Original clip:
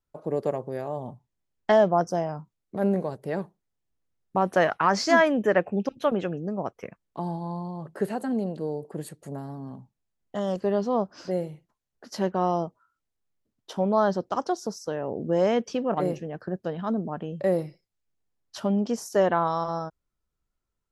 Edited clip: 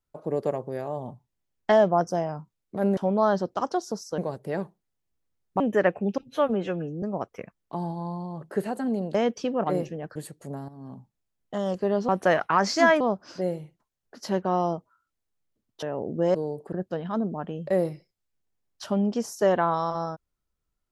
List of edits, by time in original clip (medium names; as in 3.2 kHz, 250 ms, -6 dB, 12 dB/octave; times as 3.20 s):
4.39–5.31 s: move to 10.90 s
5.94–6.47 s: stretch 1.5×
8.59–8.97 s: swap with 15.45–16.46 s
9.50–9.76 s: fade in, from -14 dB
13.72–14.93 s: move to 2.97 s